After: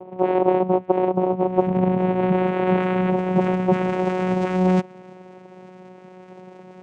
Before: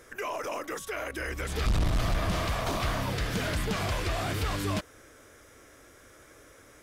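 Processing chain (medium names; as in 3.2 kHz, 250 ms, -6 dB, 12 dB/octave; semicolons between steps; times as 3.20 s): small resonant body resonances 310/470/2500/3800 Hz, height 14 dB, ringing for 25 ms; low-pass sweep 710 Hz -> 2.3 kHz, 1.44–5.11 s; vocoder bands 4, saw 184 Hz; trim +3.5 dB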